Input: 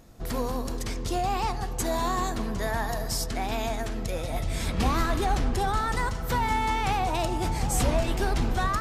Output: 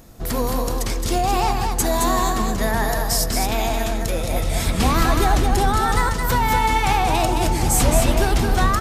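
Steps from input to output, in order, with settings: treble shelf 10 kHz +9 dB; delay 218 ms -4.5 dB; trim +6.5 dB

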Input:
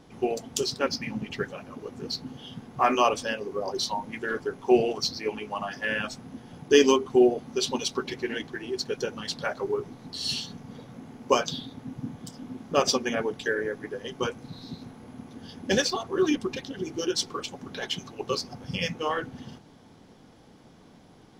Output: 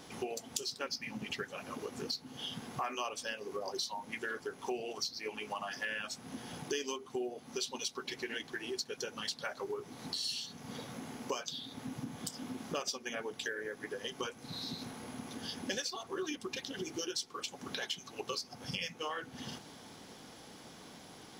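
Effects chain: tilt EQ +2.5 dB/octave; compression 5:1, threshold -41 dBFS, peak gain reduction 23.5 dB; trim +3.5 dB

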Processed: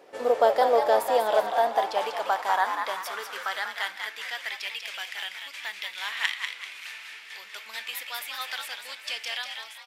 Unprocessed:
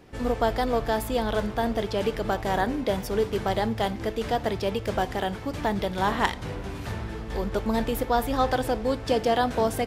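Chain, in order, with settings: fade out at the end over 0.59 s; high-pass sweep 530 Hz -> 2.3 kHz, 0.95–4.76 s; frequency-shifting echo 193 ms, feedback 37%, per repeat +89 Hz, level -6 dB; trim -1 dB

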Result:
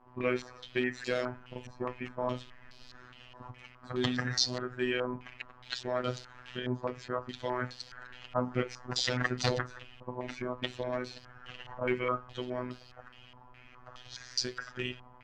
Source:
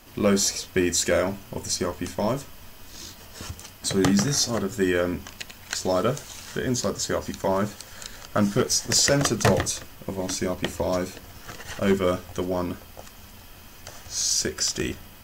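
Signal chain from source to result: coarse spectral quantiser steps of 15 dB; robot voice 125 Hz; step-sequenced low-pass 4.8 Hz 980–4400 Hz; trim -8 dB

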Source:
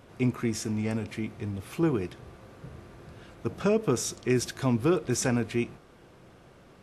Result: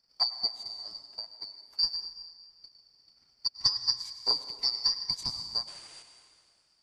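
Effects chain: four frequency bands reordered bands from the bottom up 2341; transient shaper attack +11 dB, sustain -12 dB; painted sound noise, 5.67–6.03 s, 270–10000 Hz -36 dBFS; reverberation RT60 2.2 s, pre-delay 87 ms, DRR 4.5 dB; upward expansion 1.5:1, over -34 dBFS; trim -8.5 dB

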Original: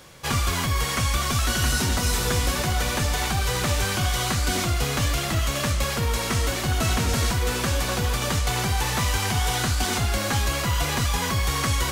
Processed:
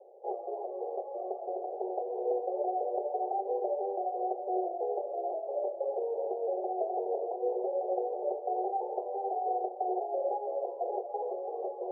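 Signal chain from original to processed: Chebyshev band-pass 370–810 Hz, order 5; trim +1.5 dB

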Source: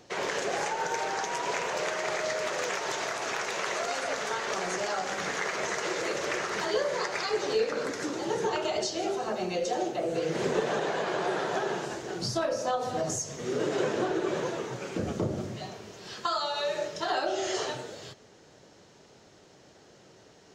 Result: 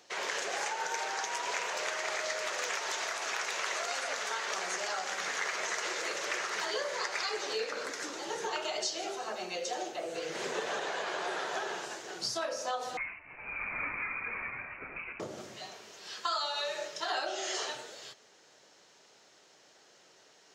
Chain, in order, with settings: high-pass 1.2 kHz 6 dB/octave; 12.97–15.20 s: frequency inversion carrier 2.8 kHz

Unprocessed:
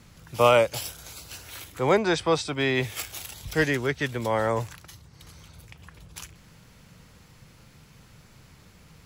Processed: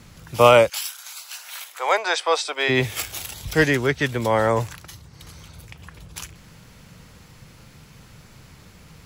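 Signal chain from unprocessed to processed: 0.68–2.68 s: high-pass 1.1 kHz -> 440 Hz 24 dB/octave; trim +5.5 dB

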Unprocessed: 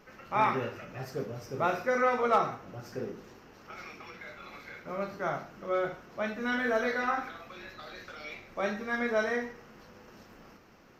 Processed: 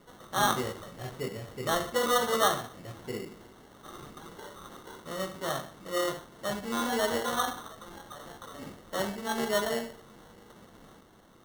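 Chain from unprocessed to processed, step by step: speed mistake 25 fps video run at 24 fps; sample-and-hold 18×

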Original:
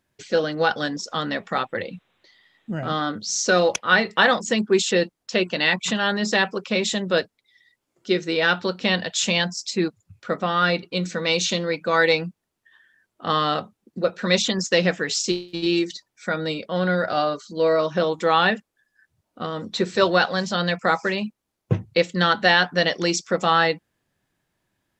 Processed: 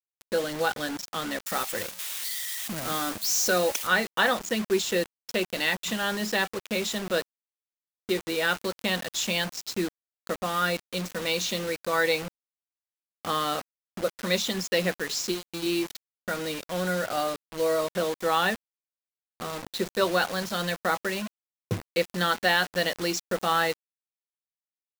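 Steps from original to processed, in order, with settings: 1.46–3.87 s: zero-crossing glitches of -16 dBFS; dynamic bell 140 Hz, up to -7 dB, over -46 dBFS, Q 3.9; bit crusher 5-bit; trim -6 dB

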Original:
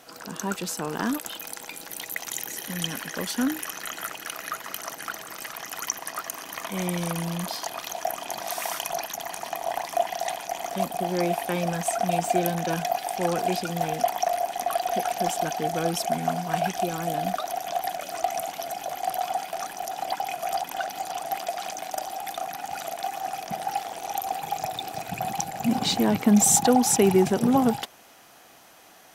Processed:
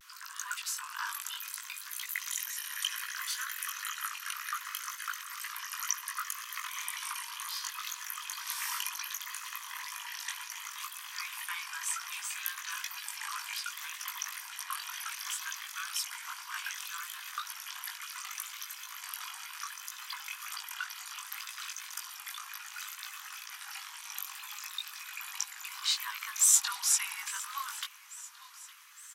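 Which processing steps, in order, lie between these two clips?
chorus 2 Hz, delay 18 ms, depth 2.9 ms; steep high-pass 1 kHz 96 dB/octave; feedback delay 849 ms, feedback 56%, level -19 dB; vibrato 0.66 Hz 50 cents

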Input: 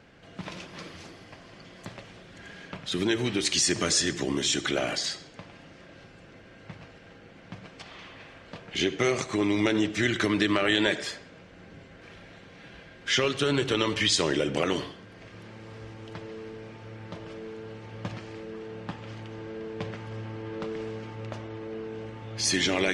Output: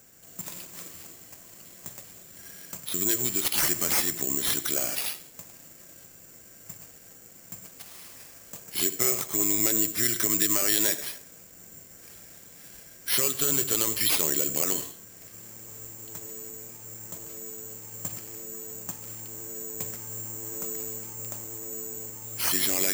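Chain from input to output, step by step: careless resampling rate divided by 6×, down none, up zero stuff; trim -7.5 dB

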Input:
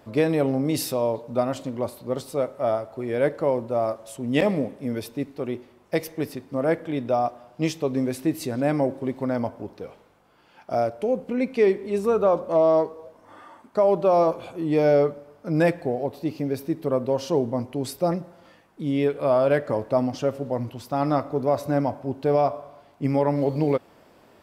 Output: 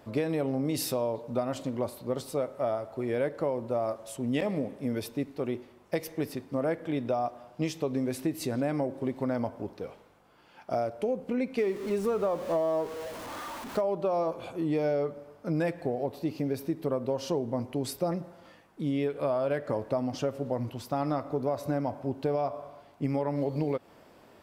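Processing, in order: 11.58–13.81 s: jump at every zero crossing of -34.5 dBFS; compression 6:1, threshold -24 dBFS, peak gain reduction 10 dB; trim -1.5 dB

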